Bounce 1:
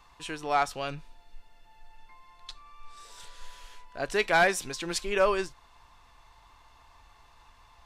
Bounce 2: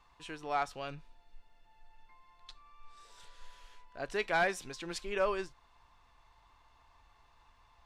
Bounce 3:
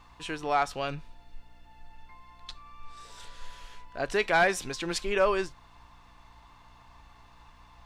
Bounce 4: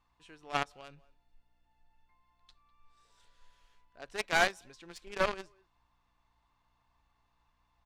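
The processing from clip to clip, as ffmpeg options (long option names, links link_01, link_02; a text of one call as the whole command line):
ffmpeg -i in.wav -af "highshelf=frequency=6700:gain=-8,volume=-7dB" out.wav
ffmpeg -i in.wav -filter_complex "[0:a]asplit=2[link_01][link_02];[link_02]alimiter=level_in=5.5dB:limit=-24dB:level=0:latency=1:release=69,volume=-5.5dB,volume=-2dB[link_03];[link_01][link_03]amix=inputs=2:normalize=0,aeval=exprs='val(0)+0.000631*(sin(2*PI*60*n/s)+sin(2*PI*2*60*n/s)/2+sin(2*PI*3*60*n/s)/3+sin(2*PI*4*60*n/s)/4+sin(2*PI*5*60*n/s)/5)':channel_layout=same,volume=4dB" out.wav
ffmpeg -i in.wav -filter_complex "[0:a]asplit=2[link_01][link_02];[link_02]adelay=200,highpass=300,lowpass=3400,asoftclip=type=hard:threshold=-24.5dB,volume=-18dB[link_03];[link_01][link_03]amix=inputs=2:normalize=0,aeval=exprs='0.188*(cos(1*acos(clip(val(0)/0.188,-1,1)))-cos(1*PI/2))+0.0841*(cos(3*acos(clip(val(0)/0.188,-1,1)))-cos(3*PI/2))+0.0168*(cos(5*acos(clip(val(0)/0.188,-1,1)))-cos(5*PI/2))':channel_layout=same" out.wav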